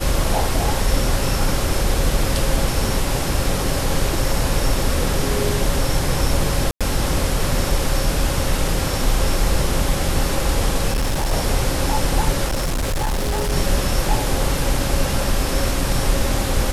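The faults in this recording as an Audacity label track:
6.710000	6.810000	drop-out 96 ms
10.890000	11.330000	clipping −16 dBFS
12.470000	13.530000	clipping −17.5 dBFS

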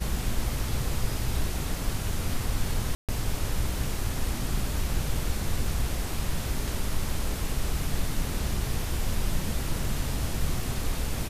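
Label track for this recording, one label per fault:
2.950000	3.090000	drop-out 137 ms

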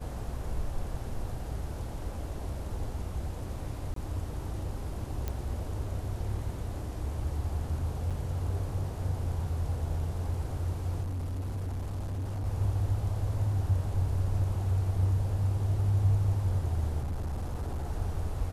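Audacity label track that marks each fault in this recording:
3.940000	3.960000	drop-out 23 ms
5.280000	5.280000	click −19 dBFS
8.100000	8.110000	drop-out 6.6 ms
11.020000	12.460000	clipping −31 dBFS
17.020000	17.890000	clipping −29.5 dBFS

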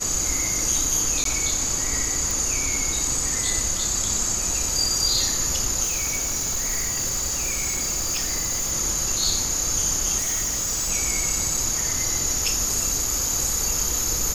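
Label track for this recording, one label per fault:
1.240000	1.250000	drop-out 13 ms
2.310000	2.310000	click
5.830000	8.730000	clipping −21.5 dBFS
10.180000	10.910000	clipping −21.5 dBFS
11.570000	11.570000	drop-out 3 ms

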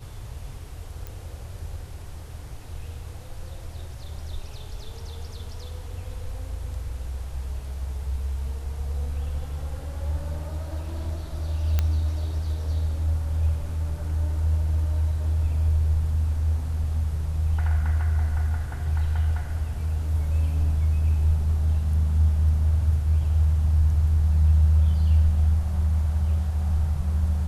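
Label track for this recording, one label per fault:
1.070000	1.070000	click
11.790000	11.790000	click −10 dBFS

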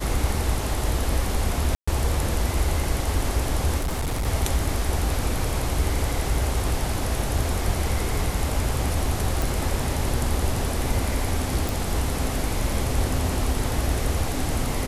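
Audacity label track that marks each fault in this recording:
1.750000	1.880000	drop-out 125 ms
3.770000	4.270000	clipping −22 dBFS
9.420000	9.420000	click
11.690000	11.690000	click

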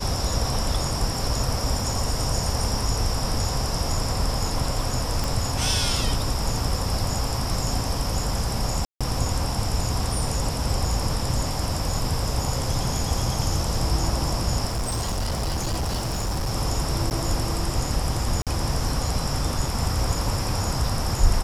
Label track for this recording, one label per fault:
5.240000	5.240000	click
8.850000	9.010000	drop-out 156 ms
14.650000	16.510000	clipping −22 dBFS
17.100000	17.110000	drop-out 9.3 ms
18.420000	18.470000	drop-out 47 ms

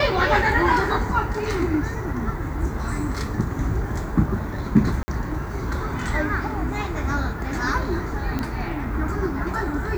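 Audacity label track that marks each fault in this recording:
5.030000	5.080000	drop-out 50 ms
8.390000	8.390000	click −13 dBFS

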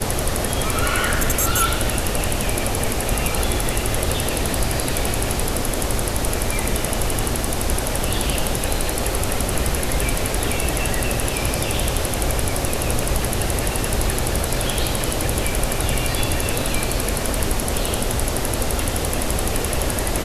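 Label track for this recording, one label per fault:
7.440000	7.440000	drop-out 3.2 ms

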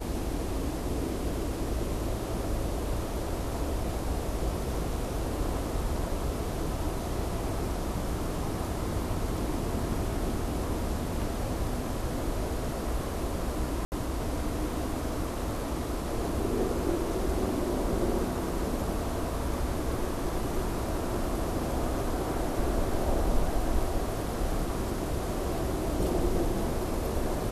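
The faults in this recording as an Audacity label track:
13.850000	13.920000	drop-out 69 ms

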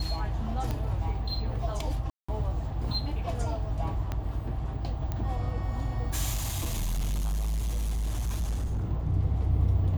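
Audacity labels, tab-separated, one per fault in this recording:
0.710000	0.710000	click −19 dBFS
2.100000	2.290000	drop-out 185 ms
4.120000	4.120000	click −19 dBFS
5.120000	5.120000	click −19 dBFS
6.330000	8.890000	clipping −26 dBFS

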